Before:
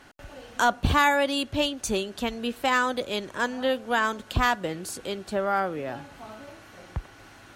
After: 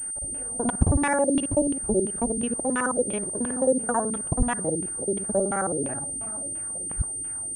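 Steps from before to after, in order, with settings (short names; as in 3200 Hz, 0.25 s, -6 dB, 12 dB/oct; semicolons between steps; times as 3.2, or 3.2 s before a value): local time reversal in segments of 54 ms; low shelf 500 Hz +10.5 dB; LFO low-pass saw down 2.9 Hz 250–3400 Hz; high shelf 2200 Hz -8.5 dB; pulse-width modulation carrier 8800 Hz; gain -5.5 dB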